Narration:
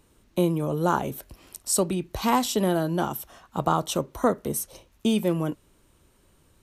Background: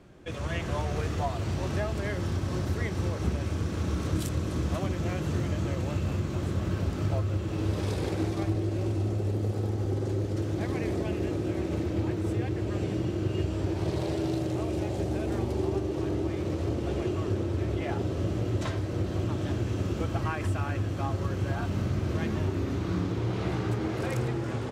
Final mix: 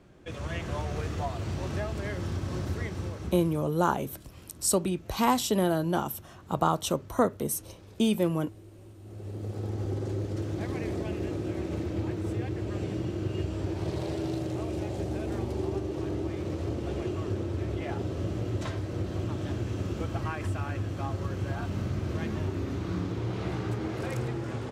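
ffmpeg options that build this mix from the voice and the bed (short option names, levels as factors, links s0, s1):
-filter_complex "[0:a]adelay=2950,volume=0.794[s0];[1:a]volume=6.31,afade=t=out:st=2.74:d=0.98:silence=0.11885,afade=t=in:st=9.01:d=0.78:silence=0.11885[s1];[s0][s1]amix=inputs=2:normalize=0"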